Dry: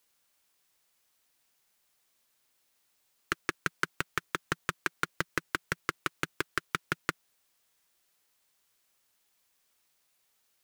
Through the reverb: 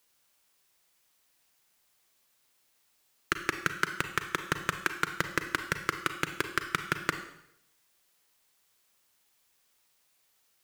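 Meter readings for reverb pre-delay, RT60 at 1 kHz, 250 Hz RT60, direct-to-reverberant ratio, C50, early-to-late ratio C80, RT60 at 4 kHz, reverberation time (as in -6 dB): 33 ms, 0.70 s, 0.75 s, 7.0 dB, 9.5 dB, 12.0 dB, 0.70 s, 0.75 s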